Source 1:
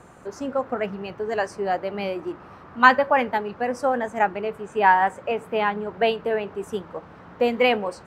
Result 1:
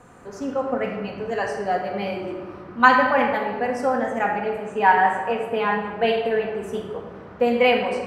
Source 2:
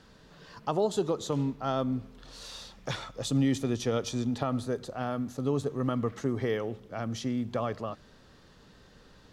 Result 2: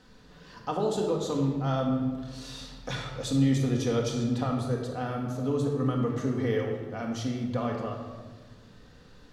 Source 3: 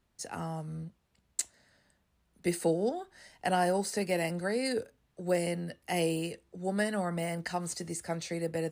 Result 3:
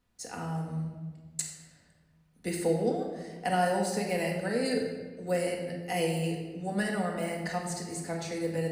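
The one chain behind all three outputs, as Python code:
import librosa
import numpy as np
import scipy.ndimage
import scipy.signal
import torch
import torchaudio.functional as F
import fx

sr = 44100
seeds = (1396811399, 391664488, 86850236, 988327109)

y = fx.room_shoebox(x, sr, seeds[0], volume_m3=1200.0, walls='mixed', distance_m=1.9)
y = y * 10.0 ** (-2.5 / 20.0)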